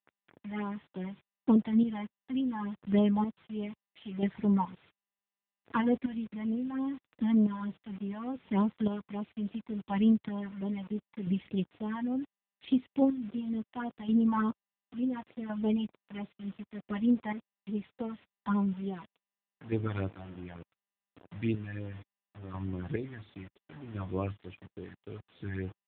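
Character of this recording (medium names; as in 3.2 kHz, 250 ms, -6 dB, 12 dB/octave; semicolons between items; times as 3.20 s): chopped level 0.71 Hz, depth 60%, duty 30%; phasing stages 12, 3.4 Hz, lowest notch 400–2100 Hz; a quantiser's noise floor 8-bit, dither none; AMR-NB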